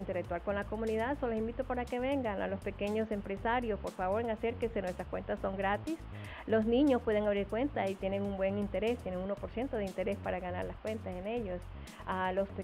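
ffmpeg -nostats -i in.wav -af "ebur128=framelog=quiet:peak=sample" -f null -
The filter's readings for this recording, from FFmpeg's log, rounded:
Integrated loudness:
  I:         -35.0 LUFS
  Threshold: -45.1 LUFS
Loudness range:
  LRA:         4.6 LU
  Threshold: -54.8 LUFS
  LRA low:   -37.4 LUFS
  LRA high:  -32.8 LUFS
Sample peak:
  Peak:      -18.9 dBFS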